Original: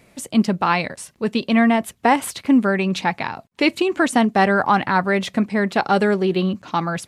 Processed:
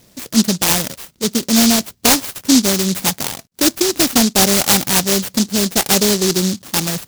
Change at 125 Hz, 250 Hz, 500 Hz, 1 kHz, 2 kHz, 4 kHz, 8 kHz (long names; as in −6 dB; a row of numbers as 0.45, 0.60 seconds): +3.0, +2.0, 0.0, −4.5, −1.5, +13.0, +20.5 decibels